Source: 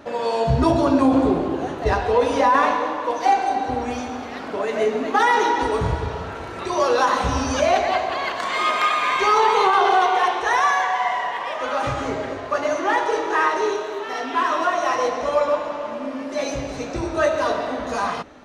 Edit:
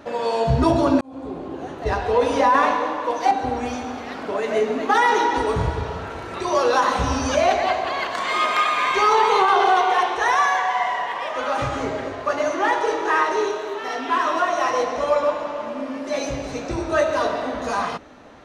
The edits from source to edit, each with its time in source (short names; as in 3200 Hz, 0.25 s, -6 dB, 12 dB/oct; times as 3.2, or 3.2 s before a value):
1.01–2.26 fade in linear
3.31–3.56 cut